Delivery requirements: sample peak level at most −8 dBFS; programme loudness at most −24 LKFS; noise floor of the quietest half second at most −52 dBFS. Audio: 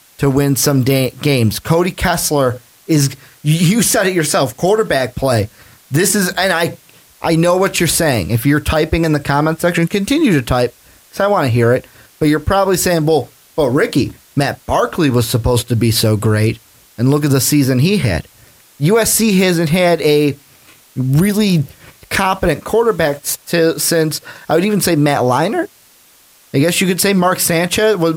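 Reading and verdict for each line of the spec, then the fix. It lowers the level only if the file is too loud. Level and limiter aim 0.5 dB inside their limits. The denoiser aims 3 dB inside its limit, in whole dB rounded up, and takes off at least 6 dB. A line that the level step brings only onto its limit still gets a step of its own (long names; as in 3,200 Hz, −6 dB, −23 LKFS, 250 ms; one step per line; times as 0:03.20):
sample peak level −3.5 dBFS: out of spec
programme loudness −14.5 LKFS: out of spec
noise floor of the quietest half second −48 dBFS: out of spec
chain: level −10 dB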